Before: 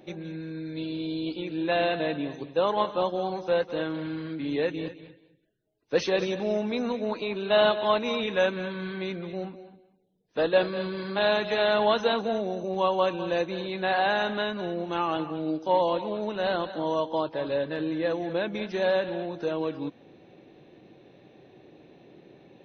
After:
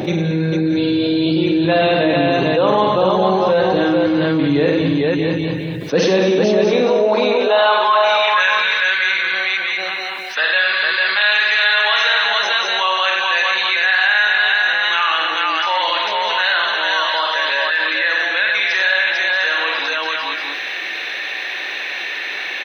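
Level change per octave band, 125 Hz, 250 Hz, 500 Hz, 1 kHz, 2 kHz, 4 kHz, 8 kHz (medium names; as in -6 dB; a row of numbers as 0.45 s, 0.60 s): +13.5 dB, +11.5 dB, +8.0 dB, +11.5 dB, +20.0 dB, +17.5 dB, no reading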